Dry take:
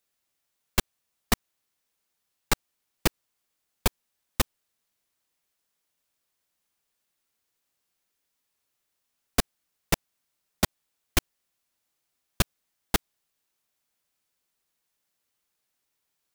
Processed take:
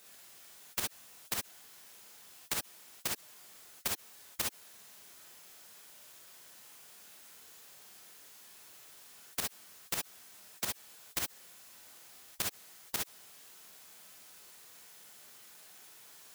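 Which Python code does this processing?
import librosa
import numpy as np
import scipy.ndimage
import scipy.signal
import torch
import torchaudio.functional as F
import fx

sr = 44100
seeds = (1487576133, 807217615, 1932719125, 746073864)

y = scipy.signal.sosfilt(scipy.signal.butter(2, 140.0, 'highpass', fs=sr, output='sos'), x)
y = fx.over_compress(y, sr, threshold_db=-24.0, ratio=-0.5)
y = fx.rev_gated(y, sr, seeds[0], gate_ms=80, shape='rising', drr_db=-1.5)
y = fx.spectral_comp(y, sr, ratio=4.0)
y = F.gain(torch.from_numpy(y), -8.0).numpy()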